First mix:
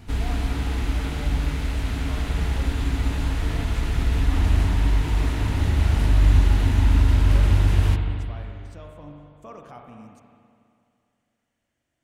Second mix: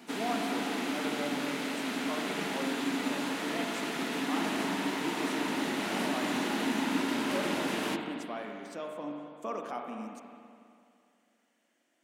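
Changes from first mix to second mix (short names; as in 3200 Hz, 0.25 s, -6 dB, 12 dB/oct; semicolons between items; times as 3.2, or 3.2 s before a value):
speech +5.5 dB; master: add steep high-pass 210 Hz 36 dB/oct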